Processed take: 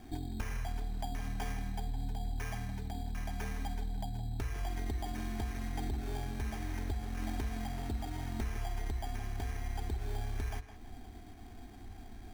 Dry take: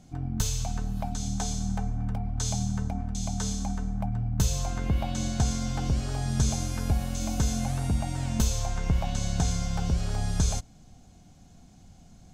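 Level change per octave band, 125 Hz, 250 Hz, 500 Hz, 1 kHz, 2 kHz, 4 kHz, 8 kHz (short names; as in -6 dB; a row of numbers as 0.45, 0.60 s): -11.5, -11.0, -7.5, -6.5, -3.5, -12.5, -19.5 dB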